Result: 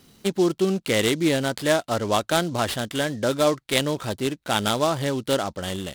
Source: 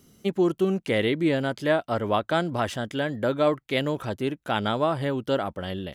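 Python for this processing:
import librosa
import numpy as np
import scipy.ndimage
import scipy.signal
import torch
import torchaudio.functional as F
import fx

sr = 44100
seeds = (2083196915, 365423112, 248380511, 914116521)

y = fx.peak_eq(x, sr, hz=4200.0, db=11.5, octaves=0.76)
y = fx.noise_mod_delay(y, sr, seeds[0], noise_hz=4800.0, depth_ms=0.031)
y = F.gain(torch.from_numpy(y), 1.5).numpy()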